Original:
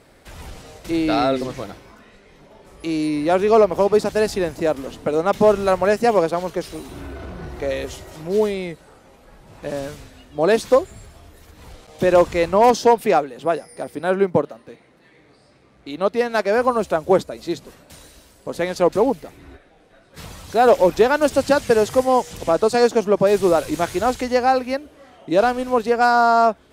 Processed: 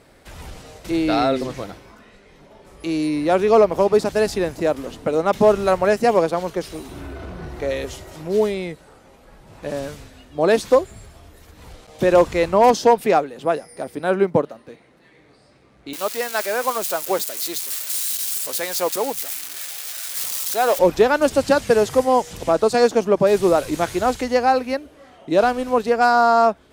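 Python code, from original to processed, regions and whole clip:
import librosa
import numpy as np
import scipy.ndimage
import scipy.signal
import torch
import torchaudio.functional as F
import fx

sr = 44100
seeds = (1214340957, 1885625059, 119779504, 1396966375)

y = fx.chain(x, sr, fx.crossing_spikes(level_db=-17.5),
    fx.highpass(hz=900.0, slope=6),
    fx.quant_companded(bits=6), at=(15.93, 20.79))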